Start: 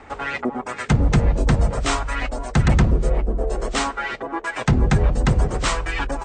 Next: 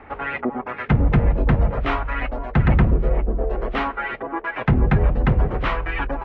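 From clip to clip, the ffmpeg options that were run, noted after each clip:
ffmpeg -i in.wav -af "lowpass=frequency=2700:width=0.5412,lowpass=frequency=2700:width=1.3066" out.wav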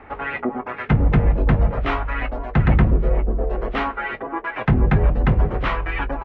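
ffmpeg -i in.wav -filter_complex "[0:a]asplit=2[link_01][link_02];[link_02]adelay=19,volume=-13dB[link_03];[link_01][link_03]amix=inputs=2:normalize=0" out.wav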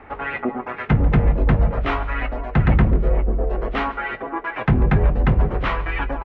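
ffmpeg -i in.wav -af "aecho=1:1:142|284|426:0.112|0.0438|0.0171" out.wav

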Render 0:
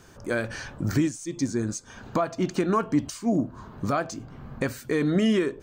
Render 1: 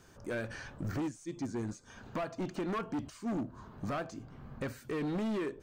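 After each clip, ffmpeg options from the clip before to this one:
ffmpeg -i in.wav -filter_complex "[0:a]volume=24dB,asoftclip=hard,volume=-24dB,acrossover=split=3000[link_01][link_02];[link_02]acompressor=threshold=-45dB:ratio=4:attack=1:release=60[link_03];[link_01][link_03]amix=inputs=2:normalize=0,volume=-7.5dB" out.wav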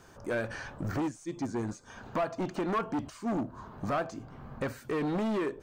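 ffmpeg -i in.wav -af "equalizer=frequency=850:width_type=o:width=1.8:gain=5.5,volume=2dB" out.wav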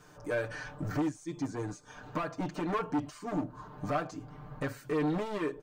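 ffmpeg -i in.wav -af "aecho=1:1:6.7:0.88,volume=-3.5dB" out.wav

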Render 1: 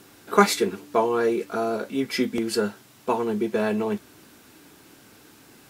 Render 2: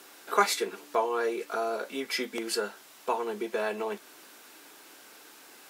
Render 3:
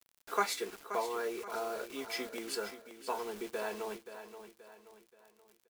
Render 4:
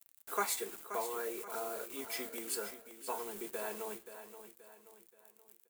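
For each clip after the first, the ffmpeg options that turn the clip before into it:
ffmpeg -i in.wav -filter_complex "[0:a]highpass=500,asplit=2[link_01][link_02];[link_02]acompressor=threshold=-34dB:ratio=6,volume=3dB[link_03];[link_01][link_03]amix=inputs=2:normalize=0,volume=-6dB" out.wav
ffmpeg -i in.wav -af "acrusher=bits=6:mix=0:aa=0.000001,aecho=1:1:528|1056|1584|2112:0.282|0.116|0.0474|0.0194,volume=-7.5dB" out.wav
ffmpeg -i in.wav -af "flanger=delay=4.5:depth=9.3:regen=-87:speed=0.64:shape=sinusoidal,aexciter=amount=4.5:drive=1.5:freq=7200,volume=1dB" out.wav

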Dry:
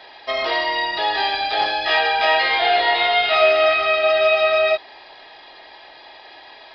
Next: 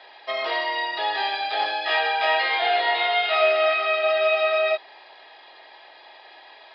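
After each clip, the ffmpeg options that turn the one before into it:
ffmpeg -i in.wav -filter_complex "[0:a]acrossover=split=320 5000:gain=0.2 1 0.251[link_01][link_02][link_03];[link_01][link_02][link_03]amix=inputs=3:normalize=0,volume=-4dB" out.wav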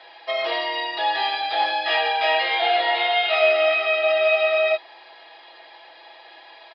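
ffmpeg -i in.wav -af "aecho=1:1:6:0.59" out.wav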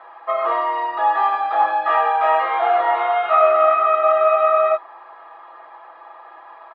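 ffmpeg -i in.wav -af "lowpass=frequency=1200:width_type=q:width=8.9" out.wav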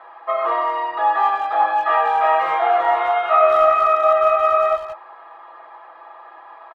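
ffmpeg -i in.wav -filter_complex "[0:a]asplit=2[link_01][link_02];[link_02]adelay=180,highpass=300,lowpass=3400,asoftclip=type=hard:threshold=-13dB,volume=-13dB[link_03];[link_01][link_03]amix=inputs=2:normalize=0" out.wav

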